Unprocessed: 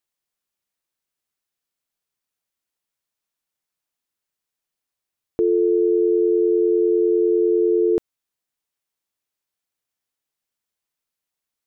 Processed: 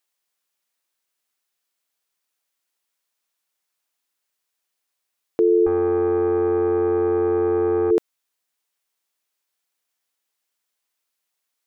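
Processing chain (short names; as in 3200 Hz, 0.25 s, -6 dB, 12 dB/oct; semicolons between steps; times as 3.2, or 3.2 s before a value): HPF 520 Hz 6 dB/oct; 5.66–7.91 tube stage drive 21 dB, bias 0.45; gain +6 dB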